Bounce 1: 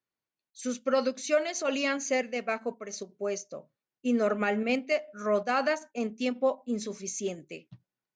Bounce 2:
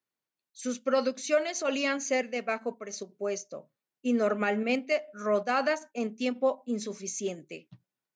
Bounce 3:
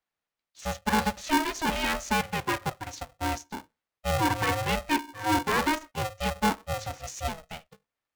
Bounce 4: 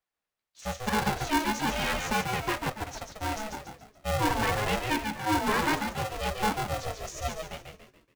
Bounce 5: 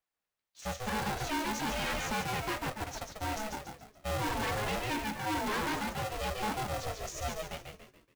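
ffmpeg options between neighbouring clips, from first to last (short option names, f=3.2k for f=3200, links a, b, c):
-af "highpass=120"
-filter_complex "[0:a]asplit=2[a][b];[b]highpass=f=720:p=1,volume=12dB,asoftclip=type=tanh:threshold=-14.5dB[c];[a][c]amix=inputs=2:normalize=0,lowpass=f=1.7k:p=1,volume=-6dB,aeval=exprs='val(0)*sgn(sin(2*PI*320*n/s))':c=same"
-filter_complex "[0:a]flanger=delay=1.6:depth=7.8:regen=-53:speed=1.1:shape=sinusoidal,asplit=2[a][b];[b]asplit=5[c][d][e][f][g];[c]adelay=142,afreqshift=-73,volume=-5dB[h];[d]adelay=284,afreqshift=-146,volume=-12.5dB[i];[e]adelay=426,afreqshift=-219,volume=-20.1dB[j];[f]adelay=568,afreqshift=-292,volume=-27.6dB[k];[g]adelay=710,afreqshift=-365,volume=-35.1dB[l];[h][i][j][k][l]amix=inputs=5:normalize=0[m];[a][m]amix=inputs=2:normalize=0,volume=2dB"
-af "acrusher=bits=3:mode=log:mix=0:aa=0.000001,asoftclip=type=hard:threshold=-29dB,volume=-1.5dB"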